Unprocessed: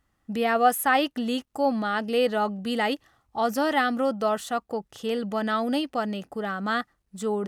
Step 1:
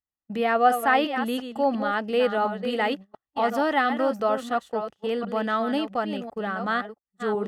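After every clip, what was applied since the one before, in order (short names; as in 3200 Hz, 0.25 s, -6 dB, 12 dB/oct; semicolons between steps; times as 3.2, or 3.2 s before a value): reverse delay 0.35 s, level -8.5 dB; tone controls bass -4 dB, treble -10 dB; gate -36 dBFS, range -28 dB; gain +1 dB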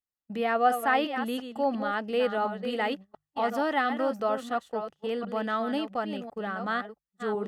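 notches 50/100/150 Hz; gain -4 dB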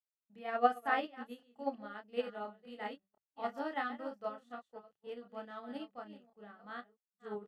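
high shelf 9500 Hz -5.5 dB; doubler 29 ms -2.5 dB; upward expander 2.5:1, over -34 dBFS; gain -4 dB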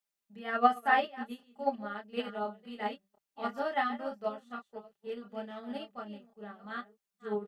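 comb 5 ms, depth 73%; gain +4 dB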